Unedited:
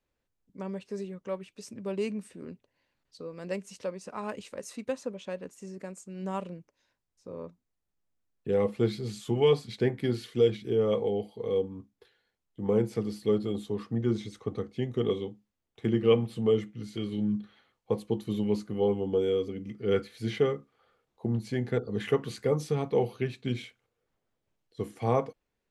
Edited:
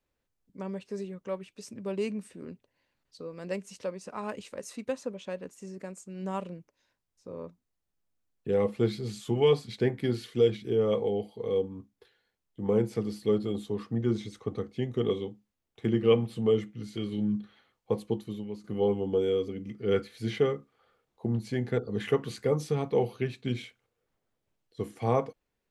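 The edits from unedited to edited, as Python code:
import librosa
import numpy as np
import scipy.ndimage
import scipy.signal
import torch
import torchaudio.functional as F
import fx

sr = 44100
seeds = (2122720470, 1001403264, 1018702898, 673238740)

y = fx.edit(x, sr, fx.fade_out_to(start_s=18.1, length_s=0.54, curve='qua', floor_db=-12.0), tone=tone)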